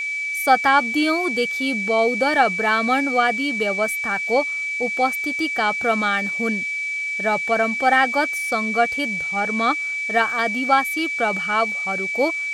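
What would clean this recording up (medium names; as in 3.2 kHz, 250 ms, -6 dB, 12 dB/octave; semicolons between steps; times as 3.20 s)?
band-stop 2.3 kHz, Q 30; noise print and reduce 30 dB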